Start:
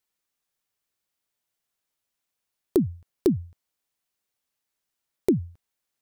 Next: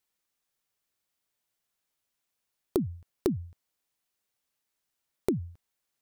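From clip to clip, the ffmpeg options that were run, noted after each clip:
-af "acompressor=threshold=-25dB:ratio=4"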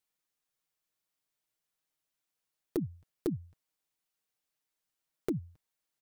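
-af "aecho=1:1:6.4:0.42,volume=16.5dB,asoftclip=hard,volume=-16.5dB,volume=-5dB"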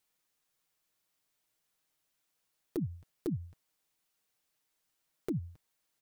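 -af "alimiter=level_in=8dB:limit=-24dB:level=0:latency=1:release=169,volume=-8dB,volume=6dB"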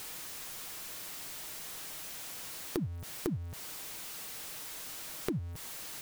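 -af "aeval=exprs='val(0)+0.5*0.00398*sgn(val(0))':c=same,acompressor=threshold=-44dB:ratio=5,volume=11dB"

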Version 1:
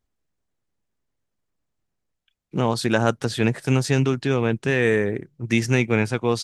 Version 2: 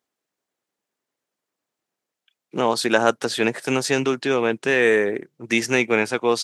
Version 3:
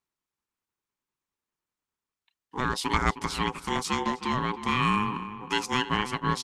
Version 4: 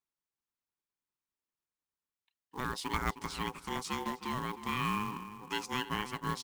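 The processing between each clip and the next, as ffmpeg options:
-af "highpass=330,volume=4dB"
-filter_complex "[0:a]asplit=2[a][b];[b]adelay=311,lowpass=f=1.9k:p=1,volume=-12dB,asplit=2[c][d];[d]adelay=311,lowpass=f=1.9k:p=1,volume=0.38,asplit=2[e][f];[f]adelay=311,lowpass=f=1.9k:p=1,volume=0.38,asplit=2[g][h];[h]adelay=311,lowpass=f=1.9k:p=1,volume=0.38[i];[a][c][e][g][i]amix=inputs=5:normalize=0,aeval=exprs='val(0)*sin(2*PI*630*n/s)':c=same,volume=-4.5dB"
-af "acrusher=bits=4:mode=log:mix=0:aa=0.000001,volume=-8.5dB"

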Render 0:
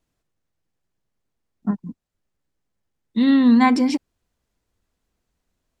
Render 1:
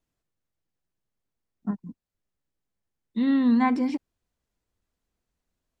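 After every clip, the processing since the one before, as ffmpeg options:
-filter_complex "[0:a]acrossover=split=2600[a][b];[b]acompressor=threshold=-41dB:ratio=4:attack=1:release=60[c];[a][c]amix=inputs=2:normalize=0,volume=-6.5dB"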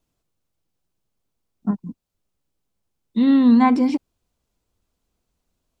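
-af "equalizer=f=1.8k:t=o:w=0.51:g=-6.5,volume=7dB"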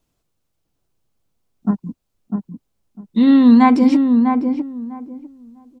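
-filter_complex "[0:a]asplit=2[a][b];[b]adelay=650,lowpass=f=1k:p=1,volume=-4.5dB,asplit=2[c][d];[d]adelay=650,lowpass=f=1k:p=1,volume=0.2,asplit=2[e][f];[f]adelay=650,lowpass=f=1k:p=1,volume=0.2[g];[a][c][e][g]amix=inputs=4:normalize=0,volume=4dB"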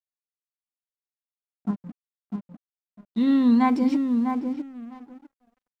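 -af "aeval=exprs='sgn(val(0))*max(abs(val(0))-0.01,0)':c=same,volume=-8.5dB"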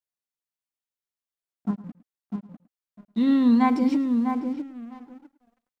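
-af "aecho=1:1:108:0.133"

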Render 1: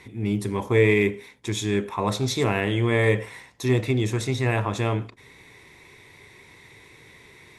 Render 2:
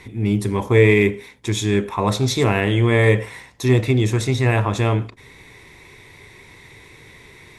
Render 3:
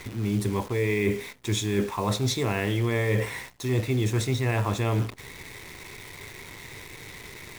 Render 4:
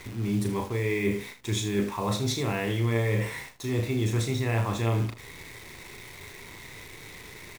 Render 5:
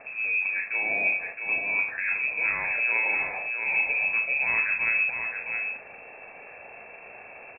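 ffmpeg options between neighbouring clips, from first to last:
-af "lowshelf=f=64:g=9.5,volume=4.5dB"
-af "areverse,acompressor=threshold=-23dB:ratio=12,areverse,acrusher=bits=8:dc=4:mix=0:aa=0.000001,volume=1.5dB"
-af "aecho=1:1:35|78:0.473|0.251,volume=-3dB"
-af "aecho=1:1:666:0.501,lowpass=f=2.3k:t=q:w=0.5098,lowpass=f=2.3k:t=q:w=0.6013,lowpass=f=2.3k:t=q:w=0.9,lowpass=f=2.3k:t=q:w=2.563,afreqshift=-2700"

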